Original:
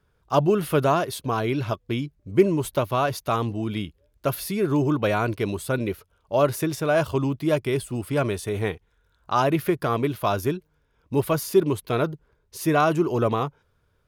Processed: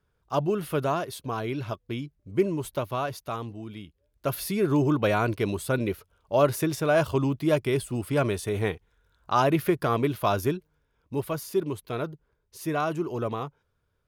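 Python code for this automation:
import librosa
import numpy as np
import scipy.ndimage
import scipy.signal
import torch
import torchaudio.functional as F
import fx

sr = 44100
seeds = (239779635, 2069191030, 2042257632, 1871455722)

y = fx.gain(x, sr, db=fx.line((2.94, -6.0), (3.82, -12.5), (4.41, -1.0), (10.44, -1.0), (11.27, -7.5)))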